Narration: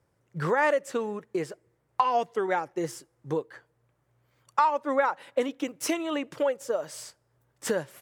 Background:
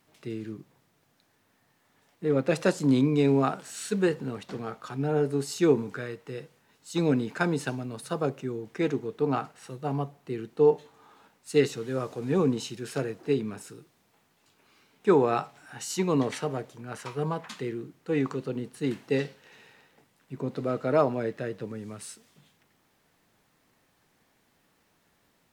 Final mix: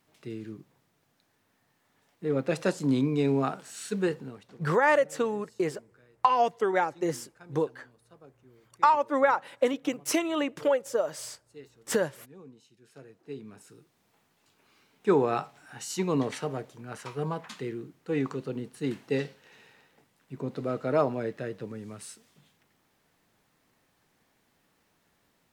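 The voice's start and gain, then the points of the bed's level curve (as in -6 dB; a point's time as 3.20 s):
4.25 s, +1.5 dB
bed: 4.12 s -3 dB
4.89 s -25.5 dB
12.65 s -25.5 dB
14.07 s -2 dB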